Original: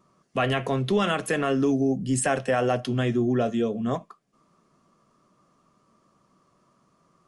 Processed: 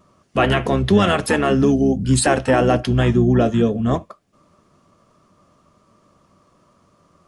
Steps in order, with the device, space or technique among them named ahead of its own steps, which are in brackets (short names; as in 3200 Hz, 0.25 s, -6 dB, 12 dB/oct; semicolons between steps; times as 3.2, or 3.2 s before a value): octave pedal (harmoniser -12 st -5 dB); gain +6.5 dB